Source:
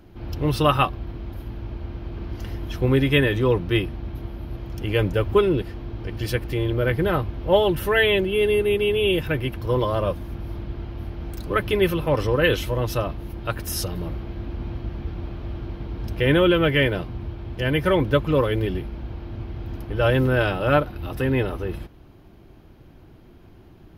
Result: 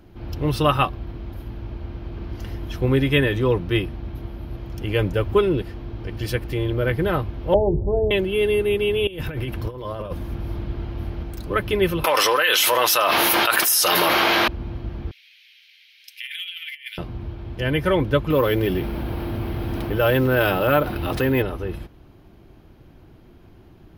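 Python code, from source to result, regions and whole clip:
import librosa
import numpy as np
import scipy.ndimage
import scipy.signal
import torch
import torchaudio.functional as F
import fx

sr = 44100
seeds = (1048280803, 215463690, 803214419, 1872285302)

y = fx.chain(x, sr, fx.steep_lowpass(hz=820.0, slope=48),
    fx.low_shelf(hz=120.0, db=10.0),
    fx.hum_notches(base_hz=60, count=8), at=(7.54, 8.11))
y = fx.chain(y, sr, fx.over_compress(threshold_db=-26.0, ratio=-0.5),
    fx.echo_single(ms=163, db=-22.0), at=(9.07, 11.23))
y = fx.chain(y, sr, fx.highpass(hz=1000.0, slope=12),
    fx.high_shelf(hz=5700.0, db=6.5),
    fx.env_flatten(amount_pct=100), at=(12.04, 14.48))
y = fx.chain(y, sr, fx.steep_highpass(hz=2100.0, slope=48),
    fx.over_compress(threshold_db=-33.0, ratio=-0.5), at=(15.11, 16.98))
y = fx.chain(y, sr, fx.low_shelf(hz=110.0, db=-10.0),
    fx.resample_bad(factor=3, down='none', up='hold'),
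    fx.env_flatten(amount_pct=50), at=(18.3, 21.42))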